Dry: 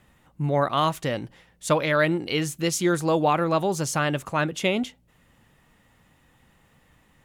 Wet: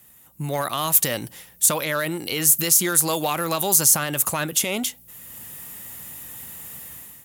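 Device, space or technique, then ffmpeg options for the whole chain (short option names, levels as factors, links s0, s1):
FM broadcast chain: -filter_complex "[0:a]highpass=58,dynaudnorm=f=200:g=5:m=5.01,acrossover=split=780|1700[s0][s1][s2];[s0]acompressor=threshold=0.0708:ratio=4[s3];[s1]acompressor=threshold=0.0794:ratio=4[s4];[s2]acompressor=threshold=0.0398:ratio=4[s5];[s3][s4][s5]amix=inputs=3:normalize=0,aemphasis=mode=production:type=50fm,alimiter=limit=0.251:level=0:latency=1:release=26,asoftclip=type=hard:threshold=0.211,lowpass=f=15000:w=0.5412,lowpass=f=15000:w=1.3066,aemphasis=mode=production:type=50fm,volume=0.75"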